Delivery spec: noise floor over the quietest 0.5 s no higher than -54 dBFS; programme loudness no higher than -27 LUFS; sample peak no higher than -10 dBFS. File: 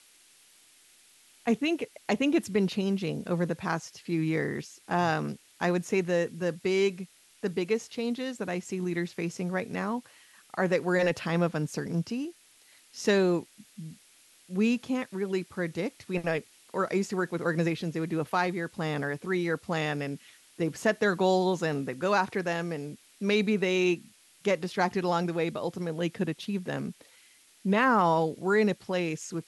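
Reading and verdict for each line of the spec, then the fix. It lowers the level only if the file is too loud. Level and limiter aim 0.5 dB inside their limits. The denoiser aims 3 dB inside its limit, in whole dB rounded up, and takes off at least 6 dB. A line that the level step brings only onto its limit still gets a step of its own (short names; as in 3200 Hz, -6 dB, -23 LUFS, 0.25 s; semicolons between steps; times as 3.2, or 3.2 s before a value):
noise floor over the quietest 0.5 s -59 dBFS: OK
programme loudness -29.5 LUFS: OK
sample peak -12.0 dBFS: OK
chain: none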